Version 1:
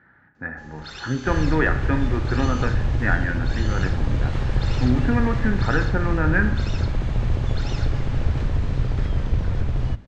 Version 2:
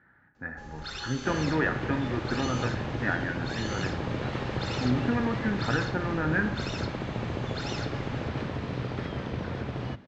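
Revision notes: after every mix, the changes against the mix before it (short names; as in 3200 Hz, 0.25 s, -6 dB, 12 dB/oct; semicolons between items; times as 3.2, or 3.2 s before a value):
speech -6.0 dB; second sound: add BPF 190–4900 Hz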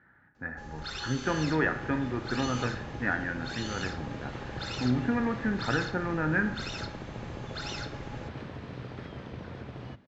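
second sound -8.0 dB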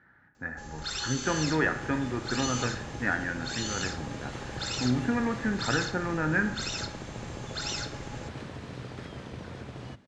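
master: remove air absorption 150 m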